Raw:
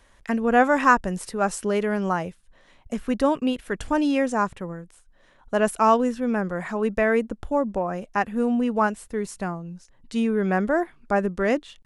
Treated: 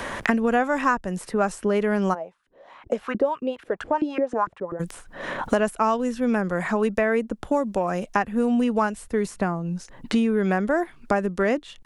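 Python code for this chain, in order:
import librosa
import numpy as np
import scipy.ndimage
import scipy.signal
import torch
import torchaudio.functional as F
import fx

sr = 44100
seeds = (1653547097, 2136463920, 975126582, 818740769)

y = fx.filter_lfo_bandpass(x, sr, shape='saw_up', hz=fx.line((2.13, 2.0), (4.79, 9.0)), low_hz=300.0, high_hz=1600.0, q=3.8, at=(2.13, 4.79), fade=0.02)
y = fx.band_squash(y, sr, depth_pct=100)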